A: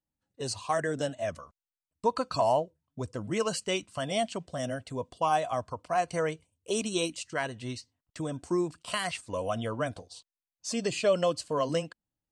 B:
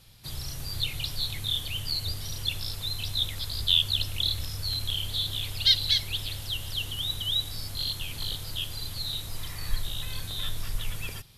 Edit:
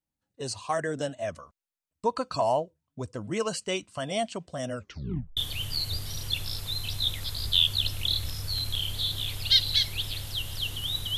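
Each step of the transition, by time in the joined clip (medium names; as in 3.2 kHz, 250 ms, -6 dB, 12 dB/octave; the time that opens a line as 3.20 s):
A
4.70 s: tape stop 0.67 s
5.37 s: go over to B from 1.52 s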